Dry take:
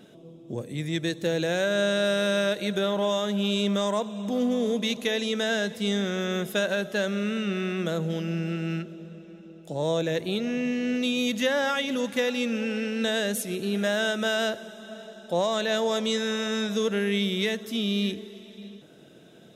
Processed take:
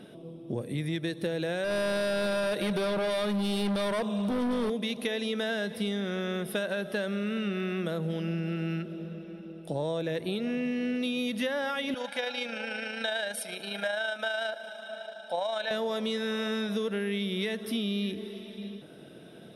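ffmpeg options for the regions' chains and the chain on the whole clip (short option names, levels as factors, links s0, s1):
-filter_complex "[0:a]asettb=1/sr,asplit=3[s0][s1][s2];[s0]atrim=end=1.644[s3];[s1]atrim=start=1.64:end=4.7,asetpts=PTS-STARTPTS,afade=t=in:d=0.004:c=qsin,afade=t=out:st=3.056:d=0.004:c=qsin,acontrast=53,asoftclip=type=hard:threshold=0.075[s4];[s2]atrim=start=4.696[s5];[s3][s4]acrossfade=d=0.004:c1=hsin:c2=qsin[s6];[s6][s5]acrossfade=d=0.004:c1=qsin:c2=hsin,asettb=1/sr,asplit=3[s7][s8][s9];[s7]atrim=end=11.944[s10];[s8]atrim=start=11.94:end=15.71,asetpts=PTS-STARTPTS,afade=t=in:d=0.004:c=qsin,afade=t=out:st=3.766:d=0.004:c=qsin,aecho=1:1:1.3:0.67,atrim=end_sample=166257,tremolo=f=27:d=0.4,highpass=540,lowpass=7400[s11];[s9]atrim=start=15.706[s12];[s10][s11]acrossfade=d=0.004:c1=hsin:c2=qsin[s13];[s13][s12]acrossfade=d=0.004:c1=qsin:c2=hsin,highshelf=f=6600:g=-9.5,acompressor=threshold=0.0282:ratio=6,superequalizer=15b=0.355:16b=2.82,volume=1.41"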